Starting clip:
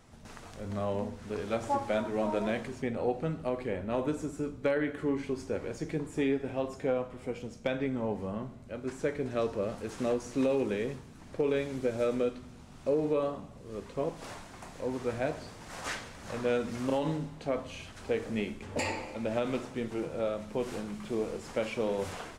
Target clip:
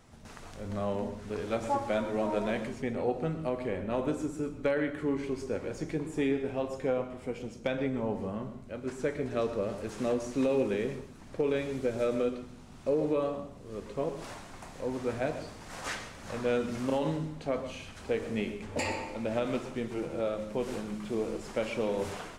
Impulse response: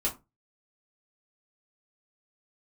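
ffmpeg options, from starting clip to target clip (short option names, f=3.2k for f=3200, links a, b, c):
-filter_complex "[0:a]asplit=2[a][b];[1:a]atrim=start_sample=2205,asetrate=43659,aresample=44100,adelay=118[c];[b][c]afir=irnorm=-1:irlink=0,volume=-18dB[d];[a][d]amix=inputs=2:normalize=0"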